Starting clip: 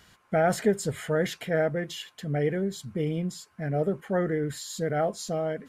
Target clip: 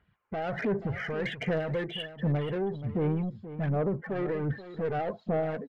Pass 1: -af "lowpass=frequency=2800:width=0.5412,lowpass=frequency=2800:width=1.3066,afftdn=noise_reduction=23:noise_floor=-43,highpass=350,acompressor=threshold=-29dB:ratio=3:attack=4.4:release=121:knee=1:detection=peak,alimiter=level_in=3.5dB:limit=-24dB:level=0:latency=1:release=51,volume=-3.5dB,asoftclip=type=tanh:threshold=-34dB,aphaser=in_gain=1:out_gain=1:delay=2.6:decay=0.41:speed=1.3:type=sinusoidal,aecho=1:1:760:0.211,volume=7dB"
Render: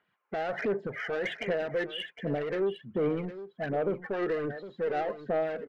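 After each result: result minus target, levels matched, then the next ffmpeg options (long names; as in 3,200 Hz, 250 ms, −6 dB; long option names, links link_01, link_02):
echo 280 ms late; downward compressor: peak gain reduction +8 dB; 250 Hz band −2.5 dB
-af "lowpass=frequency=2800:width=0.5412,lowpass=frequency=2800:width=1.3066,afftdn=noise_reduction=23:noise_floor=-43,highpass=350,acompressor=threshold=-29dB:ratio=3:attack=4.4:release=121:knee=1:detection=peak,alimiter=level_in=3.5dB:limit=-24dB:level=0:latency=1:release=51,volume=-3.5dB,asoftclip=type=tanh:threshold=-34dB,aphaser=in_gain=1:out_gain=1:delay=2.6:decay=0.41:speed=1.3:type=sinusoidal,aecho=1:1:480:0.211,volume=7dB"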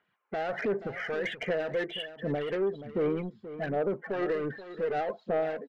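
downward compressor: peak gain reduction +8 dB; 250 Hz band −2.5 dB
-af "lowpass=frequency=2800:width=0.5412,lowpass=frequency=2800:width=1.3066,afftdn=noise_reduction=23:noise_floor=-43,highpass=350,alimiter=level_in=3.5dB:limit=-24dB:level=0:latency=1:release=51,volume=-3.5dB,asoftclip=type=tanh:threshold=-34dB,aphaser=in_gain=1:out_gain=1:delay=2.6:decay=0.41:speed=1.3:type=sinusoidal,aecho=1:1:480:0.211,volume=7dB"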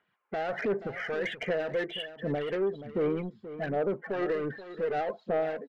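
250 Hz band −3.0 dB
-af "lowpass=frequency=2800:width=0.5412,lowpass=frequency=2800:width=1.3066,afftdn=noise_reduction=23:noise_floor=-43,alimiter=level_in=3.5dB:limit=-24dB:level=0:latency=1:release=51,volume=-3.5dB,asoftclip=type=tanh:threshold=-34dB,aphaser=in_gain=1:out_gain=1:delay=2.6:decay=0.41:speed=1.3:type=sinusoidal,aecho=1:1:480:0.211,volume=7dB"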